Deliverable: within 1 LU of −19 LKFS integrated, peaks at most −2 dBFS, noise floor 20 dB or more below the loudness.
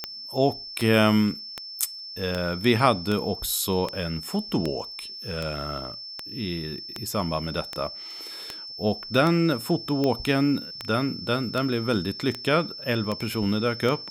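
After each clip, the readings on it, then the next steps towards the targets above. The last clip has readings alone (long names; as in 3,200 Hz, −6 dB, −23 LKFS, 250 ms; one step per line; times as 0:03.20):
number of clicks 19; interfering tone 5,300 Hz; level of the tone −36 dBFS; integrated loudness −26.0 LKFS; sample peak −4.0 dBFS; target loudness −19.0 LKFS
→ click removal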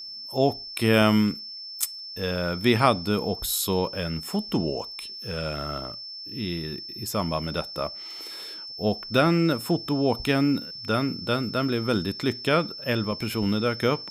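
number of clicks 0; interfering tone 5,300 Hz; level of the tone −36 dBFS
→ notch filter 5,300 Hz, Q 30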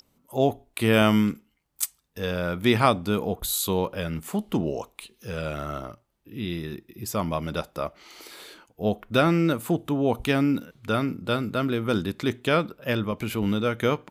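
interfering tone none found; integrated loudness −26.0 LKFS; sample peak −4.0 dBFS; target loudness −19.0 LKFS
→ level +7 dB
brickwall limiter −2 dBFS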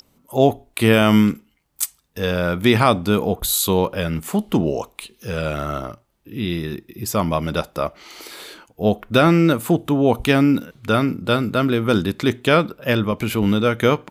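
integrated loudness −19.5 LKFS; sample peak −2.0 dBFS; background noise floor −63 dBFS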